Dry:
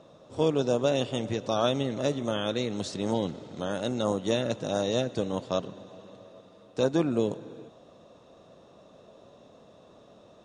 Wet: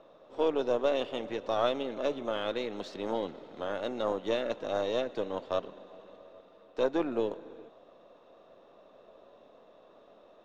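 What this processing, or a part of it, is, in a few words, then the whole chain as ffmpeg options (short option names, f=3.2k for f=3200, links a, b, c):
crystal radio: -filter_complex "[0:a]highpass=340,lowpass=3k,aeval=exprs='if(lt(val(0),0),0.708*val(0),val(0))':c=same,asettb=1/sr,asplit=3[a][b][c];[a]atrim=end=1.794[d];[b]atrim=start=1.79:end=2.35,asetpts=PTS-STARTPTS,afade=t=in:d=0.004:c=qsin,afade=t=out:st=0.556:d=0.004:c=qsin,bandreject=f=1.9k:w=9.4[e];[c]atrim=start=2.346[f];[d][e]acrossfade=d=0.004:c1=hsin:c2=qsin[g];[g][f]acrossfade=d=0.004:c1=qsin:c2=hsin"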